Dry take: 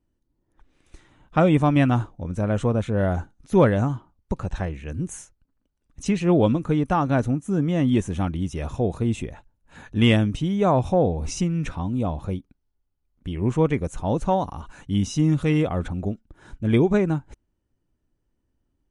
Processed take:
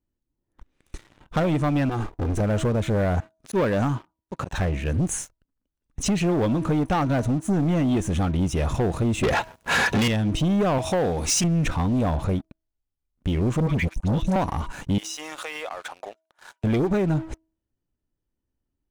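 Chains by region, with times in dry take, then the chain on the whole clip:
1.89–2.4 minimum comb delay 2.5 ms + compressor 5:1, threshold -27 dBFS
3.2–4.58 HPF 200 Hz 6 dB/oct + auto swell 0.11 s
9.23–10.08 overdrive pedal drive 38 dB, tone 4400 Hz, clips at -5 dBFS + notch comb 300 Hz
10.78–11.44 tilt +3 dB/oct + Doppler distortion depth 0.13 ms
13.6–14.36 gate -30 dBFS, range -35 dB + band shelf 660 Hz -11 dB 2.6 oct + dispersion highs, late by 94 ms, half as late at 960 Hz
14.98–16.64 HPF 650 Hz 24 dB/oct + compressor 5:1, threshold -39 dBFS
whole clip: de-hum 321.4 Hz, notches 3; compressor 10:1, threshold -23 dBFS; sample leveller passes 3; gain -2 dB

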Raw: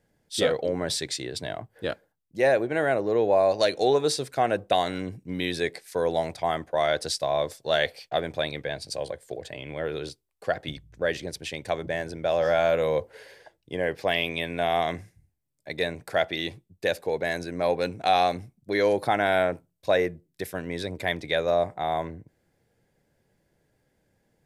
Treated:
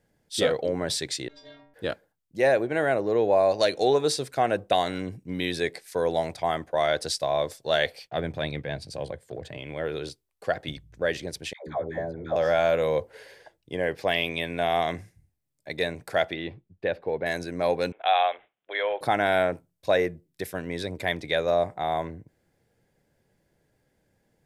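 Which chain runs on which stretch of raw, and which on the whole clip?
1.28–1.74 minimum comb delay 3.1 ms + steep low-pass 6200 Hz + metallic resonator 140 Hz, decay 0.77 s, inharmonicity 0.008
8.07–9.58 transient shaper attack -6 dB, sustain -2 dB + HPF 52 Hz + tone controls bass +8 dB, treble -5 dB
11.53–12.36 running mean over 16 samples + dispersion lows, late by 0.146 s, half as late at 570 Hz
16.33–17.26 block floating point 7-bit + air absorption 400 m
17.92–19.01 HPF 570 Hz 24 dB/oct + careless resampling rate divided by 6×, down none, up filtered
whole clip: dry

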